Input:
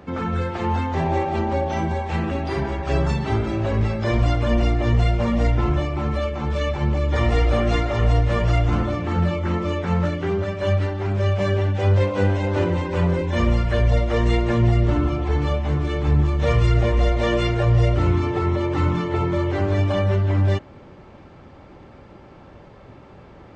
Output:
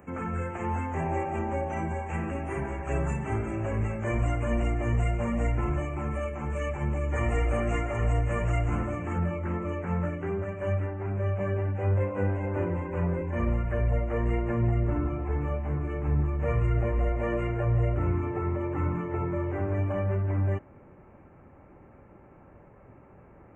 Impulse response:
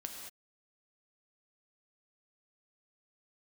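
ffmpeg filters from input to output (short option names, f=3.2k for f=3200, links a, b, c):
-af "asetnsamples=n=441:p=0,asendcmd='9.18 highshelf g -2;10.8 highshelf g -11',highshelf=f=4.2k:g=11.5,asuperstop=centerf=4300:order=8:qfactor=1,volume=-8dB"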